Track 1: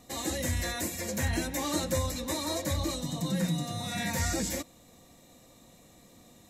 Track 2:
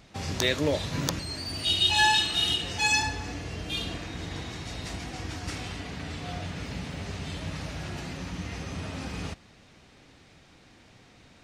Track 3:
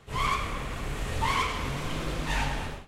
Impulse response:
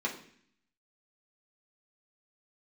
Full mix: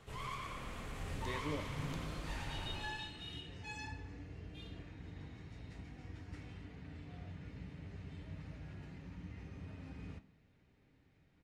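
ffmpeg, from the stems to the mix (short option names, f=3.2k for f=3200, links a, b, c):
-filter_complex "[1:a]bass=f=250:g=6,treble=f=4k:g=-9,adelay=850,volume=-19dB,asplit=2[a][b];[b]volume=-12dB[c];[2:a]acompressor=threshold=-42dB:ratio=3,volume=-5dB,asplit=2[d][e];[e]volume=-3dB[f];[3:a]atrim=start_sample=2205[g];[c][g]afir=irnorm=-1:irlink=0[h];[f]aecho=0:1:115|230|345|460|575|690|805|920:1|0.55|0.303|0.166|0.0915|0.0503|0.0277|0.0152[i];[a][d][h][i]amix=inputs=4:normalize=0"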